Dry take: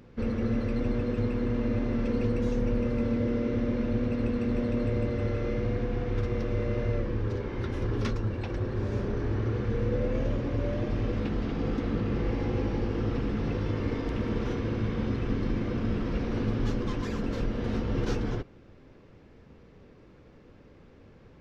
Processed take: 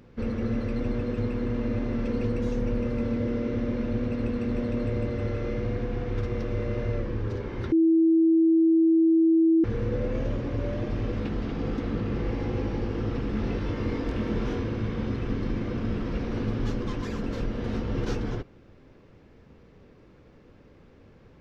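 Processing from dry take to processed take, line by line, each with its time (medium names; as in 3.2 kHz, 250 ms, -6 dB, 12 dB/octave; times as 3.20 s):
7.72–9.64 s: bleep 326 Hz -16.5 dBFS
13.31–14.64 s: doubling 23 ms -4 dB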